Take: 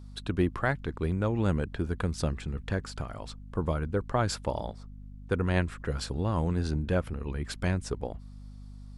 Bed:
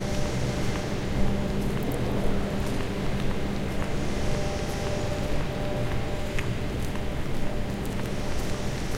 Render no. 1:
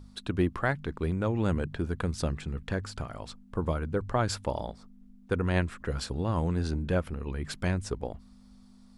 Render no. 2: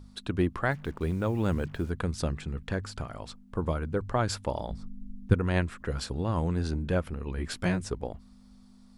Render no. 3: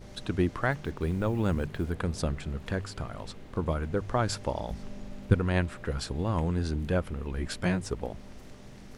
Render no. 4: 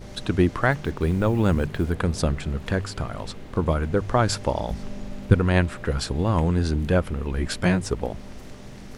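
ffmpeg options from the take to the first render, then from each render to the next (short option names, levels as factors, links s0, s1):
-af "bandreject=f=50:t=h:w=4,bandreject=f=100:t=h:w=4,bandreject=f=150:t=h:w=4"
-filter_complex "[0:a]asettb=1/sr,asplit=3[s0][s1][s2];[s0]atrim=end=0.714[s3];[s1]atrim=start=0.71:end=1.9,asetpts=PTS-STARTPTS,afade=t=in:d=0.004:c=qsin,afade=t=out:st=1.186:d=0.004:c=qsin,acrusher=bits=8:mix=0:aa=0.5[s4];[s2]atrim=start=1.896[s5];[s3][s4]acrossfade=d=0.004:c1=hsin:c2=qsin[s6];[s6][s5]acrossfade=d=0.004:c1=qsin:c2=hsin,asplit=3[s7][s8][s9];[s7]afade=t=out:st=4.7:d=0.02[s10];[s8]asubboost=boost=6:cutoff=230,afade=t=in:st=4.7:d=0.02,afade=t=out:st=5.33:d=0.02[s11];[s9]afade=t=in:st=5.33:d=0.02[s12];[s10][s11][s12]amix=inputs=3:normalize=0,asettb=1/sr,asplit=3[s13][s14][s15];[s13]atrim=end=7.364[s16];[s14]atrim=start=7.36:end=7.85,asetpts=PTS-STARTPTS,afade=t=in:d=0.004:c=qsin,afade=t=out:st=0.486:d=0.004:c=qsin,asplit=2[s17][s18];[s18]adelay=17,volume=0.794[s19];[s17][s19]amix=inputs=2:normalize=0,atrim=end_sample=21609[s20];[s15]atrim=start=7.846[s21];[s16][s20]acrossfade=d=0.004:c1=hsin:c2=qsin[s22];[s22][s21]acrossfade=d=0.004:c1=qsin:c2=hsin"
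-filter_complex "[1:a]volume=0.106[s0];[0:a][s0]amix=inputs=2:normalize=0"
-af "volume=2.24,alimiter=limit=0.891:level=0:latency=1"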